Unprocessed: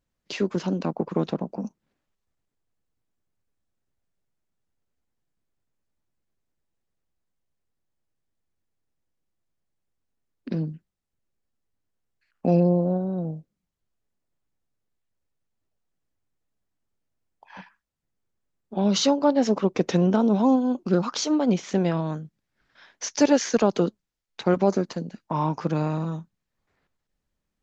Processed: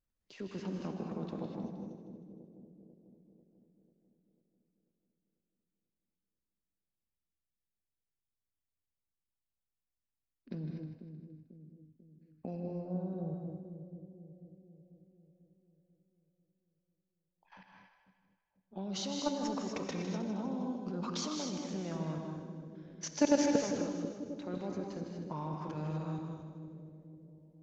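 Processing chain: low shelf 80 Hz +9 dB; level quantiser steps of 16 dB; on a send: split-band echo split 540 Hz, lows 0.493 s, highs 0.156 s, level -9 dB; on the sum: non-linear reverb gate 0.27 s rising, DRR 2 dB; gain -7.5 dB

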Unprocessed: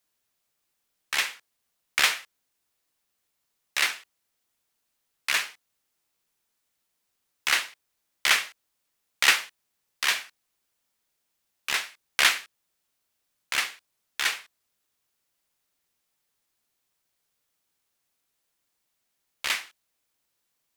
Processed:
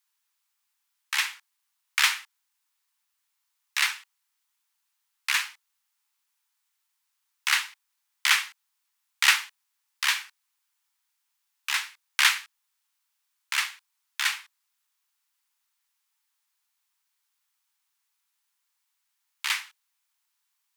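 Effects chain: steep high-pass 820 Hz 96 dB/oct

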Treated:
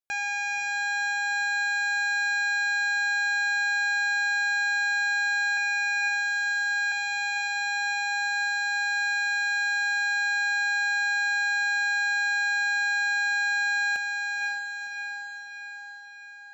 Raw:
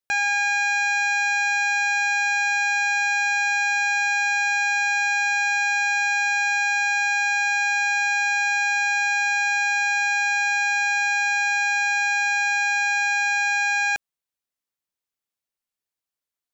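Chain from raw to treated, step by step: 5.57–6.92 HPF 1100 Hz 24 dB/oct; on a send: diffused feedback echo 0.522 s, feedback 54%, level -4 dB; on the sum: gain -7.5 dB

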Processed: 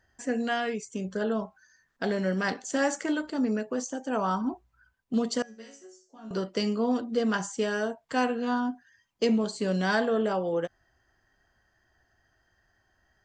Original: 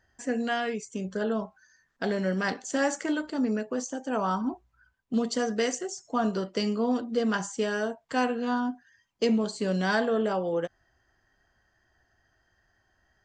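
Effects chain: 5.42–6.31 resonator bank F#3 minor, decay 0.42 s

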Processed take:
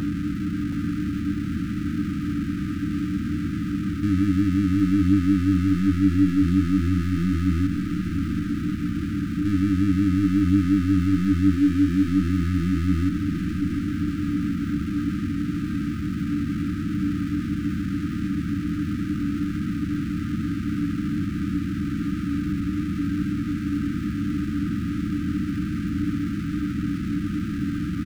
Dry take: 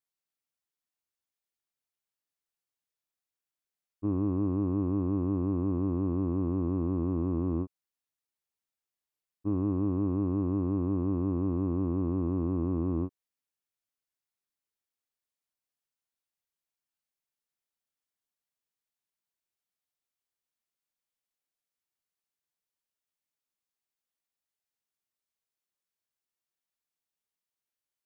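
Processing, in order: per-bin compression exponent 0.2; in parallel at -2 dB: negative-ratio compressor -33 dBFS; 5.94–6.42 on the sum: HPF 47 Hz 12 dB/oct; 11.55–12.08 fixed phaser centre 740 Hz, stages 8; power-law curve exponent 0.5; brick-wall FIR band-stop 320–1200 Hz; feedback echo 0.724 s, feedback 52%, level -8 dB; on a send at -8.5 dB: reverb, pre-delay 3 ms

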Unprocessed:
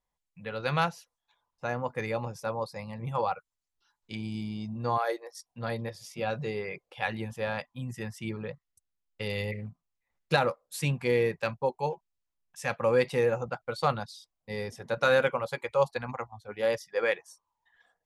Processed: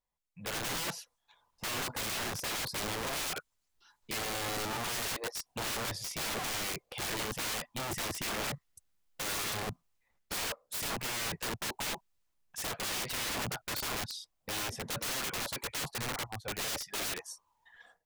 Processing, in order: AGC gain up to 14 dB; limiter -12 dBFS, peak gain reduction 10 dB; wrapped overs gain 25.5 dB; gain -5 dB

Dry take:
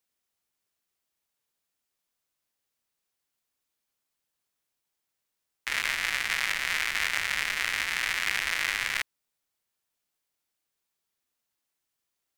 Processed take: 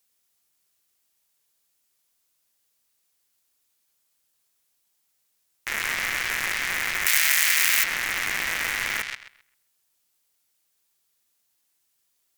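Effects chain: high shelf 3900 Hz +9.5 dB; on a send: darkening echo 0.131 s, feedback 24%, low-pass 4600 Hz, level -8.5 dB; on the sum: sine folder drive 12 dB, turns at -3.5 dBFS; 7.06–7.84 tilt +4.5 dB/oct; in parallel at -4.5 dB: soft clip -2.5 dBFS, distortion -7 dB; on the sum: gain -16.5 dB

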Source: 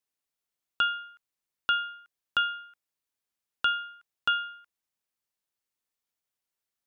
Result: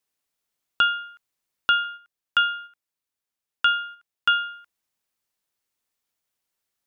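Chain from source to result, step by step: 1.84–4.43 gate -45 dBFS, range -6 dB; gain +6 dB

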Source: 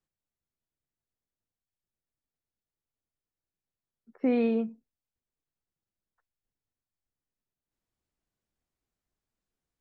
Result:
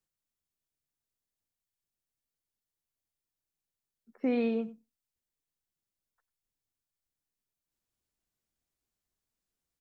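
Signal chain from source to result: high shelf 3400 Hz +8 dB; on a send: echo 95 ms -19.5 dB; on the sum: gain -3.5 dB

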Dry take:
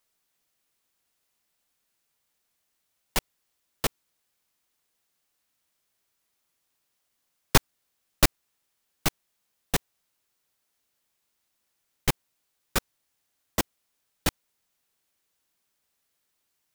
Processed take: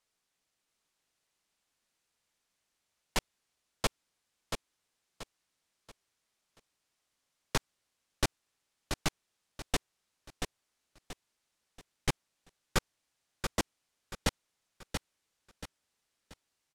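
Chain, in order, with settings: LPF 9000 Hz 12 dB/oct; limiter -14 dBFS, peak gain reduction 9.5 dB; on a send: feedback echo 0.682 s, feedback 35%, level -5.5 dB; on the sum: gain -3 dB

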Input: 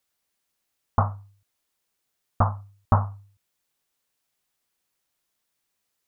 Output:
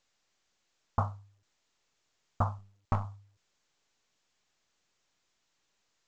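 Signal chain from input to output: 2.58–3.05 half-wave gain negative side -7 dB; gain -8 dB; µ-law 128 kbps 16000 Hz

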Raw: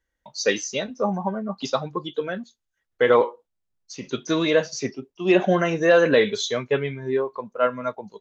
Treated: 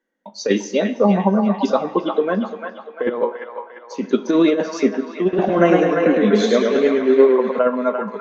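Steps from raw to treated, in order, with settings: elliptic high-pass 200 Hz, stop band 40 dB; tilt -3.5 dB/oct; negative-ratio compressor -18 dBFS, ratio -0.5; band-limited delay 0.346 s, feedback 49%, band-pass 1400 Hz, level -4 dB; plate-style reverb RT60 1.3 s, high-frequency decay 0.85×, DRR 13.5 dB; 5.22–7.59 warbling echo 0.107 s, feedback 52%, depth 90 cents, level -4 dB; gain +3.5 dB

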